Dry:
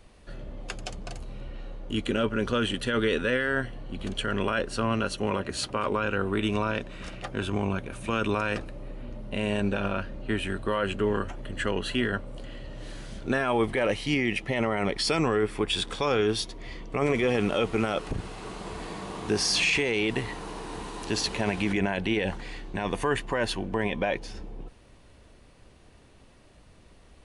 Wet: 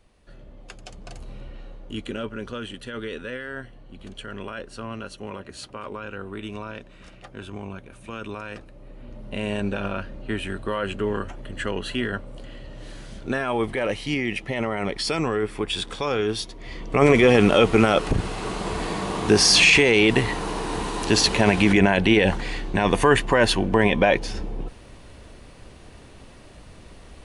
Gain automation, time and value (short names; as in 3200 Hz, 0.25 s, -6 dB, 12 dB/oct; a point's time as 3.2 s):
0.82 s -6 dB
1.29 s +1 dB
2.64 s -7.5 dB
8.67 s -7.5 dB
9.28 s +0.5 dB
16.58 s +0.5 dB
17.02 s +9.5 dB